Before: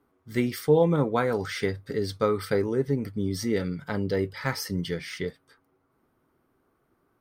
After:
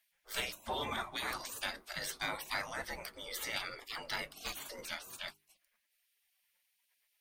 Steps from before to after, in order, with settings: spectral gate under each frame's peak -25 dB weak; soft clip -33 dBFS, distortion -21 dB; notches 50/100/150/200/250/300/350/400 Hz; gain +8 dB

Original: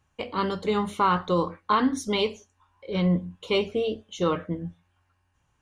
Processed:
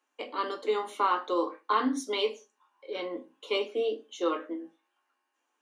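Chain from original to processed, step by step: steep high-pass 250 Hz 72 dB/oct; reverb RT60 0.25 s, pre-delay 6 ms, DRR 4.5 dB; gain -5 dB

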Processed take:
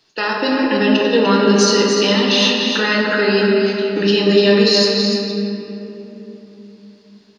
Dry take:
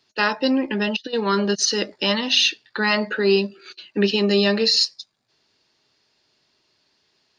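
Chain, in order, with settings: limiter -14.5 dBFS, peak gain reduction 8 dB; echo 0.297 s -6.5 dB; shoebox room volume 180 m³, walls hard, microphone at 0.57 m; gain +5 dB

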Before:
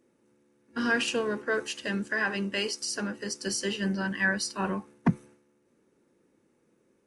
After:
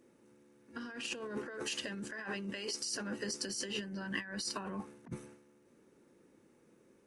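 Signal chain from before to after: negative-ratio compressor -37 dBFS, ratio -1; gain -4 dB

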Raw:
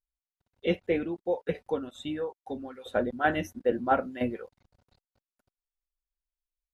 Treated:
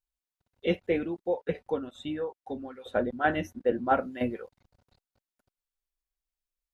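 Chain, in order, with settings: 1.28–3.9 high shelf 5500 Hz -7 dB

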